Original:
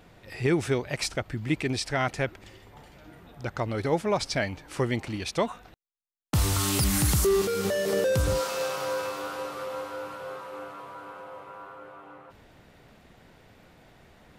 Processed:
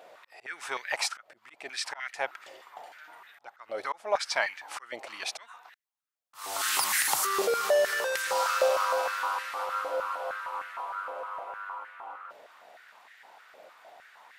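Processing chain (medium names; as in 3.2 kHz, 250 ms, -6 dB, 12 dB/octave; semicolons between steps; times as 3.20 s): slow attack 418 ms; step-sequenced high-pass 6.5 Hz 600–1800 Hz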